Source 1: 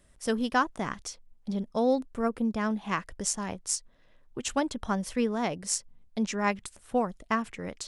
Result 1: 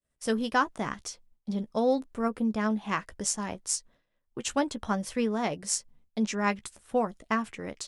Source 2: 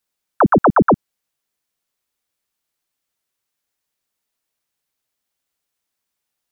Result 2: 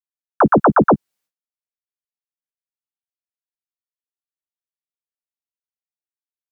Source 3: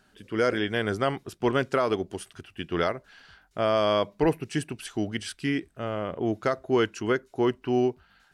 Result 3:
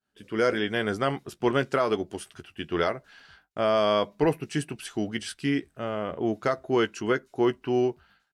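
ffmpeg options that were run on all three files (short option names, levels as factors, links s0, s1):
-filter_complex "[0:a]lowshelf=f=60:g=-7,asplit=2[s0][s1];[s1]adelay=14,volume=0.282[s2];[s0][s2]amix=inputs=2:normalize=0,agate=range=0.0224:threshold=0.00282:ratio=3:detection=peak"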